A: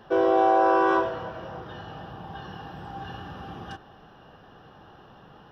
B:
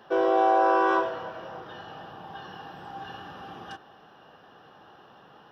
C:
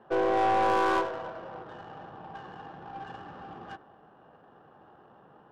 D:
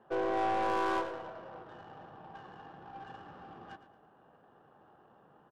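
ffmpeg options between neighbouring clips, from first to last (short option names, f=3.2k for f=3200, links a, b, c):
-af "highpass=f=360:p=1"
-af "aeval=exprs='(tanh(7.94*val(0)+0.3)-tanh(0.3))/7.94':c=same,bandreject=f=94.11:t=h:w=4,bandreject=f=188.22:t=h:w=4,bandreject=f=282.33:t=h:w=4,bandreject=f=376.44:t=h:w=4,bandreject=f=470.55:t=h:w=4,bandreject=f=564.66:t=h:w=4,bandreject=f=658.77:t=h:w=4,bandreject=f=752.88:t=h:w=4,bandreject=f=846.99:t=h:w=4,bandreject=f=941.1:t=h:w=4,bandreject=f=1.03521k:t=h:w=4,bandreject=f=1.12932k:t=h:w=4,bandreject=f=1.22343k:t=h:w=4,bandreject=f=1.31754k:t=h:w=4,bandreject=f=1.41165k:t=h:w=4,bandreject=f=1.50576k:t=h:w=4,bandreject=f=1.59987k:t=h:w=4,bandreject=f=1.69398k:t=h:w=4,bandreject=f=1.78809k:t=h:w=4,bandreject=f=1.8822k:t=h:w=4,bandreject=f=1.97631k:t=h:w=4,bandreject=f=2.07042k:t=h:w=4,bandreject=f=2.16453k:t=h:w=4,bandreject=f=2.25864k:t=h:w=4,bandreject=f=2.35275k:t=h:w=4,bandreject=f=2.44686k:t=h:w=4,bandreject=f=2.54097k:t=h:w=4,bandreject=f=2.63508k:t=h:w=4,bandreject=f=2.72919k:t=h:w=4,bandreject=f=2.8233k:t=h:w=4,bandreject=f=2.91741k:t=h:w=4,bandreject=f=3.01152k:t=h:w=4,bandreject=f=3.10563k:t=h:w=4,bandreject=f=3.19974k:t=h:w=4,bandreject=f=3.29385k:t=h:w=4,bandreject=f=3.38796k:t=h:w=4,bandreject=f=3.48207k:t=h:w=4,bandreject=f=3.57618k:t=h:w=4,adynamicsmooth=sensitivity=6.5:basefreq=1.2k"
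-af "aecho=1:1:112|224|336:0.2|0.0638|0.0204,volume=-6dB"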